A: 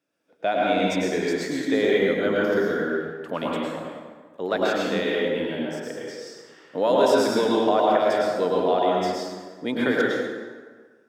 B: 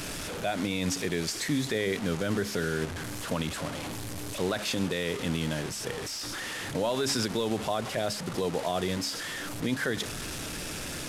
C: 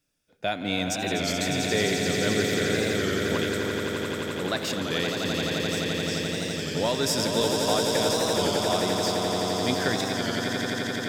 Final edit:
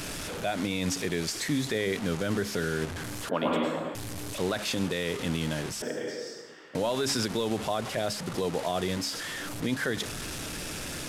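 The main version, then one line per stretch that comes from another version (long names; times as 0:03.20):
B
0:03.29–0:03.95: punch in from A
0:05.82–0:06.75: punch in from A
not used: C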